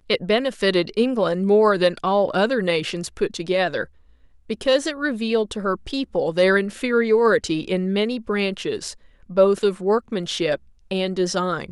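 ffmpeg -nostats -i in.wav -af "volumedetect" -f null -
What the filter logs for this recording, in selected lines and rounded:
mean_volume: -21.3 dB
max_volume: -4.8 dB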